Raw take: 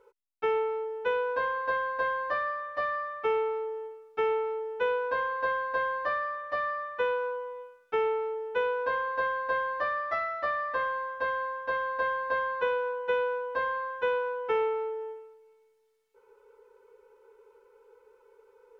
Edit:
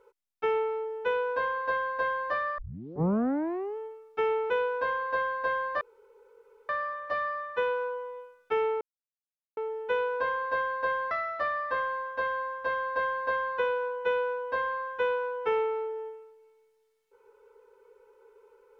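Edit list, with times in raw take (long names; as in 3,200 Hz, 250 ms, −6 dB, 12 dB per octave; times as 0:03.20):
0:02.58: tape start 1.19 s
0:04.50–0:04.80: remove
0:06.11: splice in room tone 0.88 s
0:08.23: splice in silence 0.76 s
0:09.77–0:10.14: remove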